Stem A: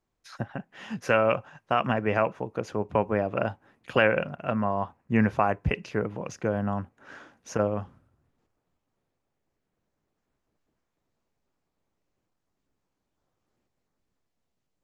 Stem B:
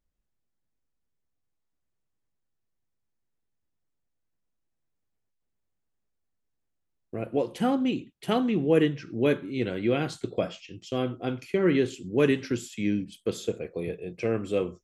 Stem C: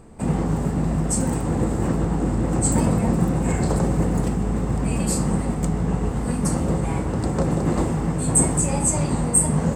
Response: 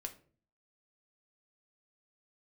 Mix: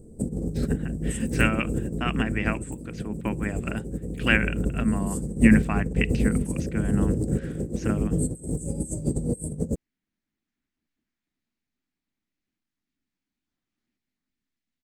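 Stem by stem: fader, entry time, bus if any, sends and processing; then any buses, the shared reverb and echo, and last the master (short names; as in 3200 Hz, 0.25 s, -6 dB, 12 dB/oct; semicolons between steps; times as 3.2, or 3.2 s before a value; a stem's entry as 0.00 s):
+2.0 dB, 0.30 s, no send, graphic EQ 125/250/500/1000/2000/4000 Hz -5/+10/-12/-6/+7/+5 dB
off
+2.0 dB, 0.00 s, send -9 dB, high shelf 8300 Hz -2 dB; negative-ratio compressor -25 dBFS, ratio -0.5; EQ curve 500 Hz 0 dB, 940 Hz -27 dB, 2600 Hz -28 dB, 10000 Hz +3 dB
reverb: on, RT60 0.45 s, pre-delay 3 ms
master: upward expander 1.5:1, over -30 dBFS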